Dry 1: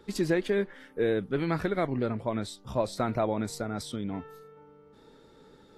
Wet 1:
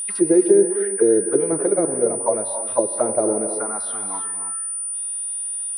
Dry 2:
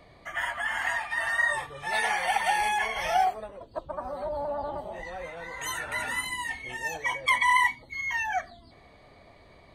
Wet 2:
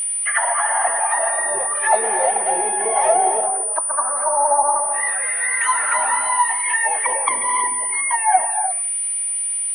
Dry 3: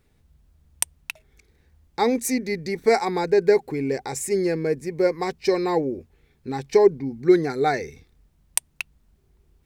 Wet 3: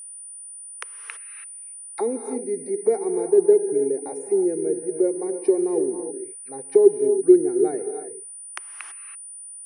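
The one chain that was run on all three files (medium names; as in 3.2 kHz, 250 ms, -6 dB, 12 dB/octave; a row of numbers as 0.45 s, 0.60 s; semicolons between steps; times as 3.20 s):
auto-wah 380–3100 Hz, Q 3.9, down, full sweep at -23.5 dBFS; gated-style reverb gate 350 ms rising, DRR 7 dB; whistle 9.4 kHz -40 dBFS; peak normalisation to -3 dBFS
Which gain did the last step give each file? +15.5 dB, +20.0 dB, +3.5 dB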